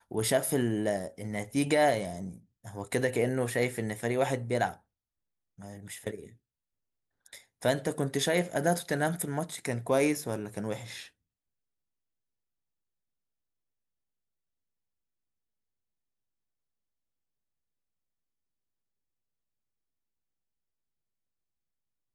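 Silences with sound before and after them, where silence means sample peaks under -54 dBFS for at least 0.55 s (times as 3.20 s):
4.78–5.58 s
6.35–7.26 s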